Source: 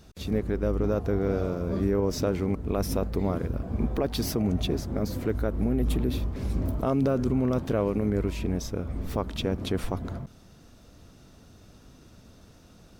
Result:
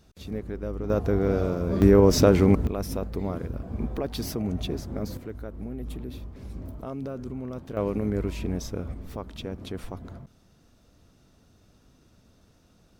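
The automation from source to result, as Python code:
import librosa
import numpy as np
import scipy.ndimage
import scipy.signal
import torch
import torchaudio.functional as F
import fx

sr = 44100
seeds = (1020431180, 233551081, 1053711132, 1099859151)

y = fx.gain(x, sr, db=fx.steps((0.0, -6.0), (0.9, 2.5), (1.82, 9.0), (2.67, -3.0), (5.17, -10.0), (7.77, -1.0), (8.94, -7.0)))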